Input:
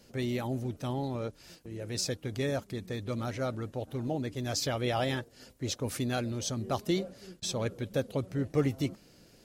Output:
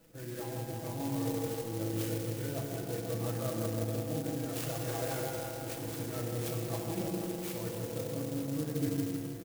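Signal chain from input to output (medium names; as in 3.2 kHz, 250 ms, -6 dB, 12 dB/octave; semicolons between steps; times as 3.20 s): knee-point frequency compression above 1 kHz 1.5:1; comb 6.1 ms, depth 71%; reverse; compression, threshold -36 dBFS, peak gain reduction 16.5 dB; reverse; tremolo saw up 0.54 Hz, depth 40%; on a send: feedback echo behind a low-pass 162 ms, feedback 65%, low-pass 1.2 kHz, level -3.5 dB; on the sum: FDN reverb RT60 3.1 s, high-frequency decay 1×, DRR -1.5 dB; sampling jitter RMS 0.1 ms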